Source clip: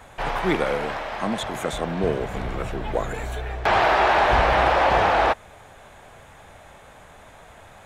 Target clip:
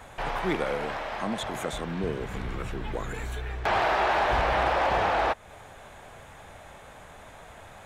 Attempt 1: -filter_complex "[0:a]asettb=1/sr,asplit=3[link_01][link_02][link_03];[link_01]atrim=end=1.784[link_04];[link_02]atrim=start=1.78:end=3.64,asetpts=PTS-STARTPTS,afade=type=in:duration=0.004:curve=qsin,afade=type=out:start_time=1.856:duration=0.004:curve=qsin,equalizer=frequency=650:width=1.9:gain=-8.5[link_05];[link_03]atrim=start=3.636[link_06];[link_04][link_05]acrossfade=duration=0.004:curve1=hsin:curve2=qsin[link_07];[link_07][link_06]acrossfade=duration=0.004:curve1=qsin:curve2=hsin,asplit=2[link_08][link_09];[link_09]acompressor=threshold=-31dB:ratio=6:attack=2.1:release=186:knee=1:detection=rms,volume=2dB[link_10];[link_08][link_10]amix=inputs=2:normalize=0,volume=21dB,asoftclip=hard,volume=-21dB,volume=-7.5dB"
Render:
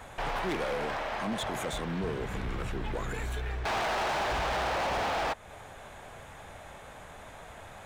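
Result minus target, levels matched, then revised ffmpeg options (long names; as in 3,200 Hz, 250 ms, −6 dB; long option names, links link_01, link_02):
gain into a clipping stage and back: distortion +19 dB
-filter_complex "[0:a]asettb=1/sr,asplit=3[link_01][link_02][link_03];[link_01]atrim=end=1.784[link_04];[link_02]atrim=start=1.78:end=3.64,asetpts=PTS-STARTPTS,afade=type=in:duration=0.004:curve=qsin,afade=type=out:start_time=1.856:duration=0.004:curve=qsin,equalizer=frequency=650:width=1.9:gain=-8.5[link_05];[link_03]atrim=start=3.636[link_06];[link_04][link_05]acrossfade=duration=0.004:curve1=hsin:curve2=qsin[link_07];[link_07][link_06]acrossfade=duration=0.004:curve1=qsin:curve2=hsin,asplit=2[link_08][link_09];[link_09]acompressor=threshold=-31dB:ratio=6:attack=2.1:release=186:knee=1:detection=rms,volume=2dB[link_10];[link_08][link_10]amix=inputs=2:normalize=0,volume=10dB,asoftclip=hard,volume=-10dB,volume=-7.5dB"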